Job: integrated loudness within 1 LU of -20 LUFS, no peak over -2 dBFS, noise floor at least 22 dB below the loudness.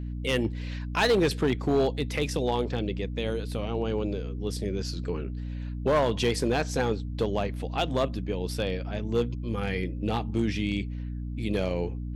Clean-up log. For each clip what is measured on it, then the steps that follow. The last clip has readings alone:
clipped samples 0.7%; clipping level -17.5 dBFS; hum 60 Hz; highest harmonic 300 Hz; hum level -31 dBFS; loudness -29.0 LUFS; peak level -17.5 dBFS; loudness target -20.0 LUFS
-> clip repair -17.5 dBFS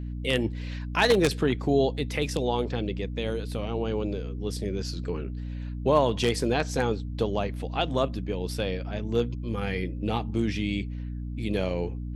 clipped samples 0.0%; hum 60 Hz; highest harmonic 300 Hz; hum level -31 dBFS
-> hum notches 60/120/180/240/300 Hz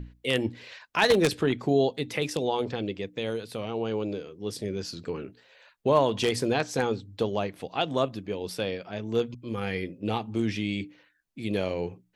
hum not found; loudness -29.0 LUFS; peak level -8.5 dBFS; loudness target -20.0 LUFS
-> trim +9 dB; peak limiter -2 dBFS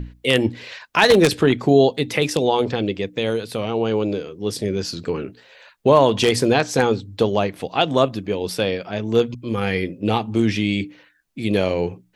loudness -20.0 LUFS; peak level -2.0 dBFS; noise floor -57 dBFS

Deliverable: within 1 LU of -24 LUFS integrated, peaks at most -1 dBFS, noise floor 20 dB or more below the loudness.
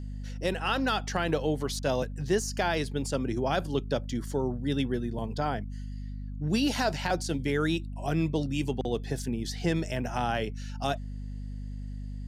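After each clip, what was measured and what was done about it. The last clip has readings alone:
hum 50 Hz; highest harmonic 250 Hz; hum level -34 dBFS; loudness -30.5 LUFS; peak level -14.5 dBFS; loudness target -24.0 LUFS
-> hum notches 50/100/150/200/250 Hz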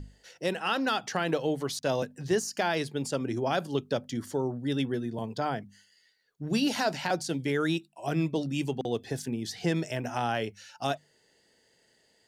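hum not found; loudness -31.0 LUFS; peak level -14.0 dBFS; loudness target -24.0 LUFS
-> trim +7 dB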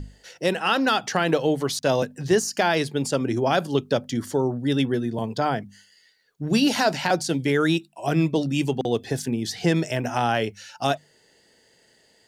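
loudness -24.0 LUFS; peak level -7.0 dBFS; noise floor -61 dBFS

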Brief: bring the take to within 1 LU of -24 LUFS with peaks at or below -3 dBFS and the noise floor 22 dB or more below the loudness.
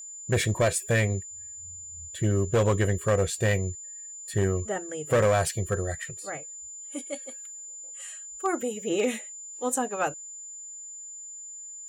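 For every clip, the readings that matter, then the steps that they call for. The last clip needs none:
clipped samples 0.7%; clipping level -17.0 dBFS; steady tone 7.1 kHz; tone level -39 dBFS; loudness -29.0 LUFS; peak level -17.0 dBFS; loudness target -24.0 LUFS
-> clip repair -17 dBFS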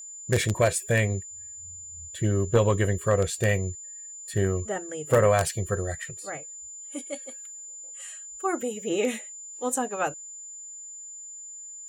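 clipped samples 0.0%; steady tone 7.1 kHz; tone level -39 dBFS
-> band-stop 7.1 kHz, Q 30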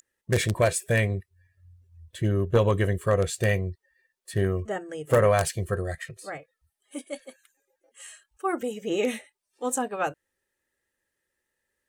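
steady tone not found; loudness -26.5 LUFS; peak level -8.0 dBFS; loudness target -24.0 LUFS
-> trim +2.5 dB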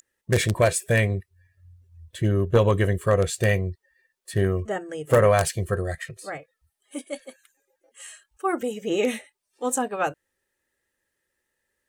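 loudness -24.0 LUFS; peak level -5.5 dBFS; noise floor -80 dBFS

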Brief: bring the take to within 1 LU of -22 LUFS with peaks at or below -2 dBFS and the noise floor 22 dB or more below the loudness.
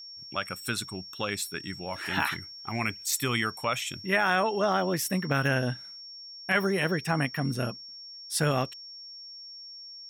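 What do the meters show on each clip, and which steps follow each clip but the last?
steady tone 5.5 kHz; tone level -42 dBFS; loudness -29.0 LUFS; peak level -12.5 dBFS; loudness target -22.0 LUFS
-> band-stop 5.5 kHz, Q 30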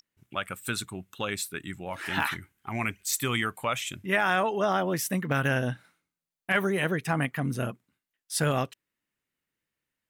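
steady tone not found; loudness -29.0 LUFS; peak level -13.0 dBFS; loudness target -22.0 LUFS
-> trim +7 dB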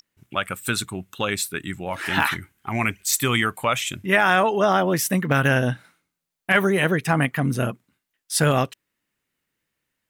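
loudness -22.0 LUFS; peak level -6.0 dBFS; noise floor -82 dBFS

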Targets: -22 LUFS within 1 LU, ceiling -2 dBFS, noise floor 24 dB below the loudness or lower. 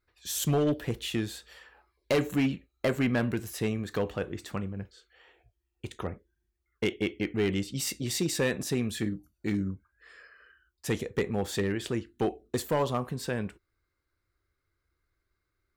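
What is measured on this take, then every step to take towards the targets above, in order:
clipped samples 0.7%; clipping level -20.5 dBFS; loudness -31.0 LUFS; peak level -20.5 dBFS; loudness target -22.0 LUFS
-> clip repair -20.5 dBFS; trim +9 dB

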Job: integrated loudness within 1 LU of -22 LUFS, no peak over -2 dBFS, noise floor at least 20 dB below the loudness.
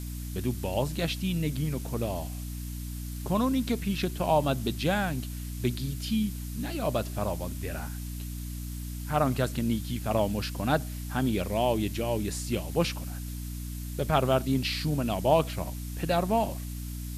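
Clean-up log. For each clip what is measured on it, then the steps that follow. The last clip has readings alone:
hum 60 Hz; highest harmonic 300 Hz; hum level -34 dBFS; noise floor -37 dBFS; noise floor target -50 dBFS; loudness -30.0 LUFS; peak level -10.0 dBFS; loudness target -22.0 LUFS
-> hum notches 60/120/180/240/300 Hz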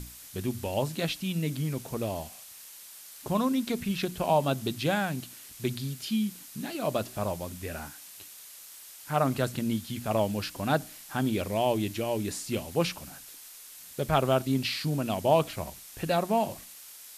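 hum not found; noise floor -48 dBFS; noise floor target -50 dBFS
-> noise print and reduce 6 dB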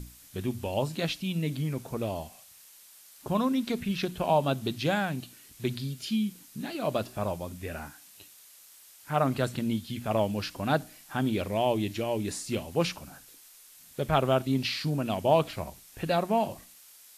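noise floor -54 dBFS; loudness -30.0 LUFS; peak level -10.5 dBFS; loudness target -22.0 LUFS
-> trim +8 dB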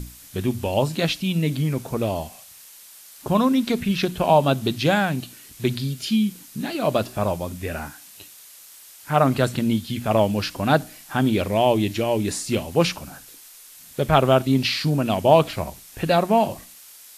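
loudness -22.0 LUFS; peak level -2.5 dBFS; noise floor -46 dBFS

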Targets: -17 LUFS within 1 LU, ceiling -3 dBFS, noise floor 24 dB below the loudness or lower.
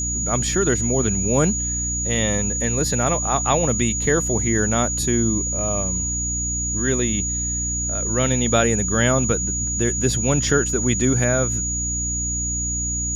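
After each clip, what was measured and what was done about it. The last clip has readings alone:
hum 60 Hz; highest harmonic 300 Hz; hum level -26 dBFS; steady tone 6.8 kHz; tone level -23 dBFS; loudness -20.0 LUFS; peak level -5.0 dBFS; loudness target -17.0 LUFS
-> de-hum 60 Hz, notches 5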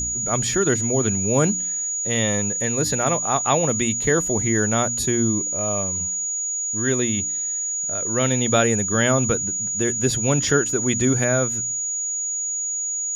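hum not found; steady tone 6.8 kHz; tone level -23 dBFS
-> band-stop 6.8 kHz, Q 30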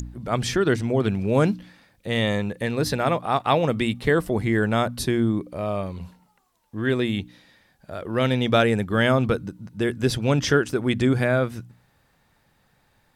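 steady tone not found; loudness -23.0 LUFS; peak level -6.5 dBFS; loudness target -17.0 LUFS
-> trim +6 dB; peak limiter -3 dBFS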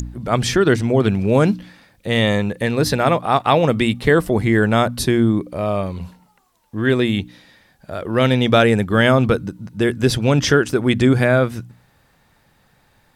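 loudness -17.5 LUFS; peak level -3.0 dBFS; noise floor -59 dBFS

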